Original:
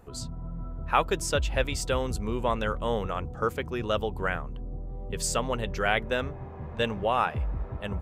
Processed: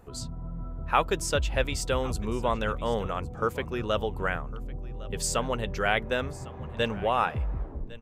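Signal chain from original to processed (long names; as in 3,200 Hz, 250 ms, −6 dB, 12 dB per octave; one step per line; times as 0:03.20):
turntable brake at the end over 0.43 s
single-tap delay 1,106 ms −19.5 dB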